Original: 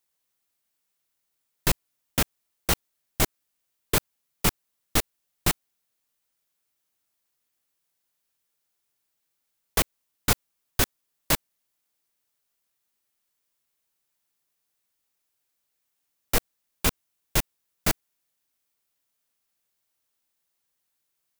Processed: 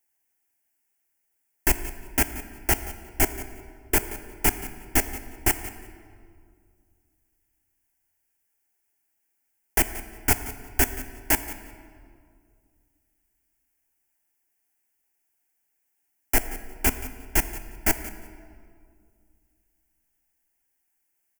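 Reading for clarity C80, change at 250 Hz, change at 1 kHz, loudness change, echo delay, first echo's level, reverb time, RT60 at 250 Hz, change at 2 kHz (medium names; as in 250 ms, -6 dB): 11.5 dB, +1.5 dB, +1.5 dB, +2.0 dB, 178 ms, -16.5 dB, 2.2 s, 2.6 s, +3.0 dB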